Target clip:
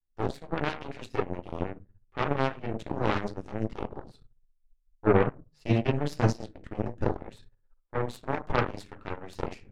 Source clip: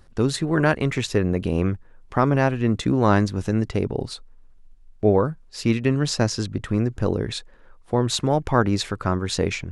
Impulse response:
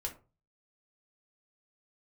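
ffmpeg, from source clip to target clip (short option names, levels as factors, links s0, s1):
-filter_complex "[0:a]asettb=1/sr,asplit=3[s0][s1][s2];[s0]atrim=end=3.914[s3];[s1]atrim=start=3.91:end=6.33,asetpts=PTS-STARTPTS,afade=t=in:d=0.004:c=qsin,afade=t=out:st=2.416:d=0.004:c=qsin,adynamicequalizer=threshold=0.0224:dfrequency=130:dqfactor=1.2:tfrequency=130:tqfactor=1.2:attack=5:release=100:ratio=0.375:range=3:mode=boostabove:tftype=bell[s4];[s2]atrim=start=6.326[s5];[s3][s4]acrossfade=d=0.004:c1=hsin:c2=qsin[s6];[s6][s5]acrossfade=d=0.004:c1=qsin:c2=hsin,agate=range=0.0224:threshold=0.01:ratio=3:detection=peak,highshelf=f=5500:g=-11.5[s7];[1:a]atrim=start_sample=2205,asetrate=38808,aresample=44100[s8];[s7][s8]afir=irnorm=-1:irlink=0,aeval=exprs='0.794*(cos(1*acos(clip(val(0)/0.794,-1,1)))-cos(1*PI/2))+0.0282*(cos(6*acos(clip(val(0)/0.794,-1,1)))-cos(6*PI/2))+0.126*(cos(7*acos(clip(val(0)/0.794,-1,1)))-cos(7*PI/2))+0.0631*(cos(8*acos(clip(val(0)/0.794,-1,1)))-cos(8*PI/2))':c=same,volume=0.473"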